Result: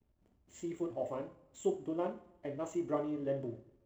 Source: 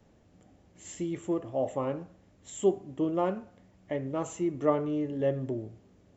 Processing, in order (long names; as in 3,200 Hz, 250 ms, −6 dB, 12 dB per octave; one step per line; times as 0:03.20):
slack as between gear wheels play −52 dBFS
coupled-rooms reverb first 0.58 s, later 1.9 s, DRR 2.5 dB
tempo change 1.6×
level −8.5 dB